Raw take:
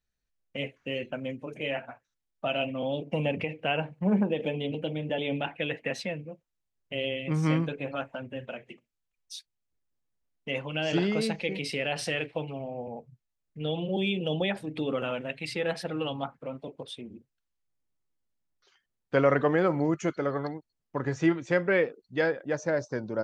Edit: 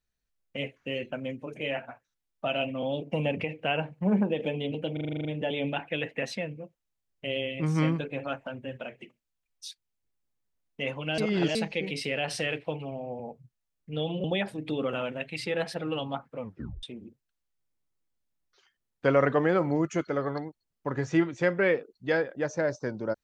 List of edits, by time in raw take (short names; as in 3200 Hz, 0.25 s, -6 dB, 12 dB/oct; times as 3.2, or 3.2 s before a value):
4.93 stutter 0.04 s, 9 plays
10.86–11.23 reverse
13.92–14.33 cut
16.48 tape stop 0.44 s